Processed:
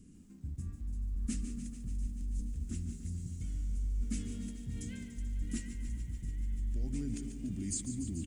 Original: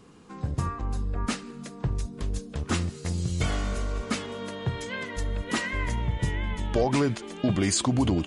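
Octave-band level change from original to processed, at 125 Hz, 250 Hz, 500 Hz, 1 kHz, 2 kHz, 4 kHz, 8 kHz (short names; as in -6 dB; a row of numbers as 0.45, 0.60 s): -10.5 dB, -11.0 dB, -26.0 dB, under -35 dB, -24.0 dB, -20.5 dB, -9.5 dB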